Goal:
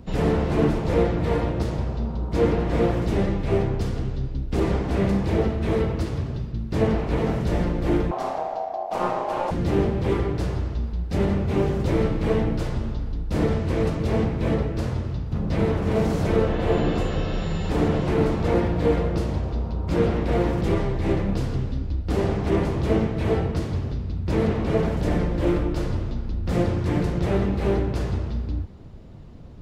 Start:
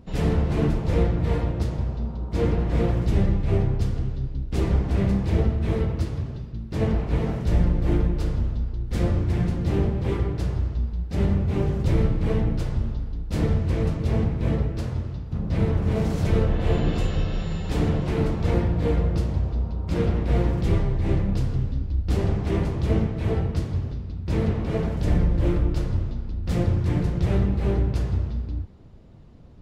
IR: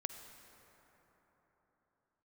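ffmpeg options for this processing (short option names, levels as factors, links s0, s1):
-filter_complex "[0:a]acrossover=split=220|1800[s0][s1][s2];[s0]acompressor=threshold=0.0355:ratio=6[s3];[s2]alimiter=level_in=6.31:limit=0.0631:level=0:latency=1,volume=0.158[s4];[s3][s1][s4]amix=inputs=3:normalize=0,asettb=1/sr,asplit=3[s5][s6][s7];[s5]atrim=end=8.114[s8];[s6]atrim=start=8.11:end=9.51,asetpts=PTS-STARTPTS,afade=t=in:d=0.004:c=qsin,afade=t=out:st=1.396:d=0.004:c=qsin,aeval=exprs='val(0)*sin(2*PI*710*n/s)':c=same[s9];[s7]atrim=start=9.506[s10];[s8][s9]acrossfade=d=0.004:c1=hsin:c2=qsin[s11];[s11][s10]acrossfade=d=0.004:c1=qsin:c2=hsin,volume=1.88"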